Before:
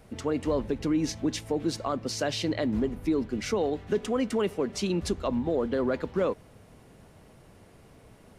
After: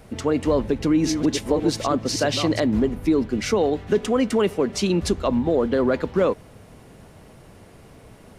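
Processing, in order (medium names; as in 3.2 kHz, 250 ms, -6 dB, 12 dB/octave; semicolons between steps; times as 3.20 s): 0.48–2.60 s: chunks repeated in reverse 560 ms, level -7 dB; trim +7 dB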